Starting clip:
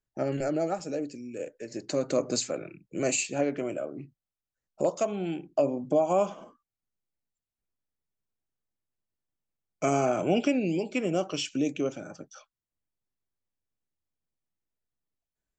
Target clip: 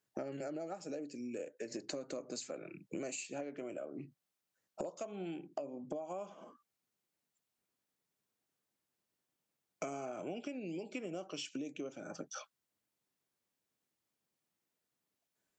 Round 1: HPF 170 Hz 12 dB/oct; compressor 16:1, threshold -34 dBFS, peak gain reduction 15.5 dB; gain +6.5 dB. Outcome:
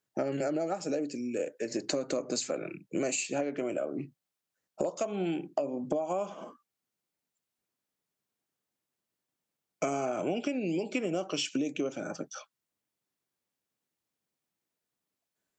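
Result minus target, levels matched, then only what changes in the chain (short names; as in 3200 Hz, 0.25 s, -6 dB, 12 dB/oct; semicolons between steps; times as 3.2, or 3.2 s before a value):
compressor: peak gain reduction -11 dB
change: compressor 16:1, threshold -45.5 dBFS, peak gain reduction 26.5 dB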